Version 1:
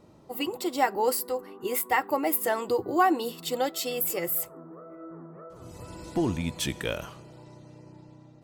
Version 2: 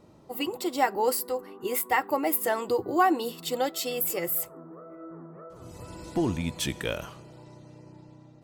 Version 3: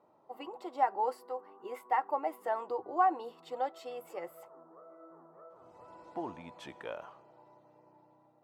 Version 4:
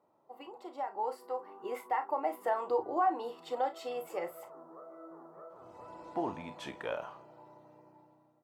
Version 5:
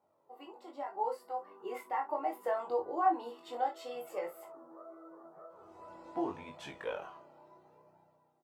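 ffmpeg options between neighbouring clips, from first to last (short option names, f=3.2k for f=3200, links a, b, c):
-af anull
-af "bandpass=f=850:t=q:w=1.8:csg=0,volume=-2.5dB"
-filter_complex "[0:a]alimiter=level_in=1.5dB:limit=-24dB:level=0:latency=1:release=188,volume=-1.5dB,dynaudnorm=f=770:g=3:m=9.5dB,asplit=2[a][b];[b]aecho=0:1:33|52:0.316|0.178[c];[a][c]amix=inputs=2:normalize=0,volume=-5.5dB"
-filter_complex "[0:a]flanger=delay=1.2:depth=2.5:regen=46:speed=0.75:shape=triangular,asplit=2[a][b];[b]adelay=21,volume=-3dB[c];[a][c]amix=inputs=2:normalize=0"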